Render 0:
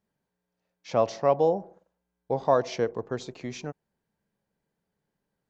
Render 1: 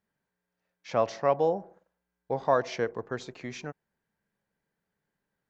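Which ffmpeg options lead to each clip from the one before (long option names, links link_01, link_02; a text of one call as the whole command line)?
ffmpeg -i in.wav -af "equalizer=frequency=1700:width_type=o:width=1.2:gain=7.5,volume=-3.5dB" out.wav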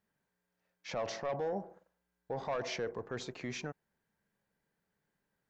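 ffmpeg -i in.wav -af "asoftclip=type=tanh:threshold=-19.5dB,alimiter=level_in=5dB:limit=-24dB:level=0:latency=1:release=15,volume=-5dB" out.wav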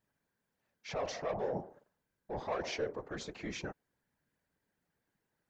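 ffmpeg -i in.wav -af "afftfilt=real='hypot(re,im)*cos(2*PI*random(0))':imag='hypot(re,im)*sin(2*PI*random(1))':win_size=512:overlap=0.75,volume=5.5dB" out.wav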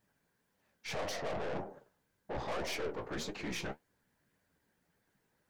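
ffmpeg -i in.wav -af "aeval=exprs='(tanh(141*val(0)+0.4)-tanh(0.4))/141':channel_layout=same,flanger=delay=9.7:depth=8.2:regen=46:speed=1.8:shape=sinusoidal,volume=11.5dB" out.wav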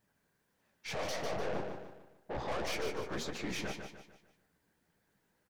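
ffmpeg -i in.wav -af "aecho=1:1:149|298|447|596|745:0.473|0.194|0.0795|0.0326|0.0134" out.wav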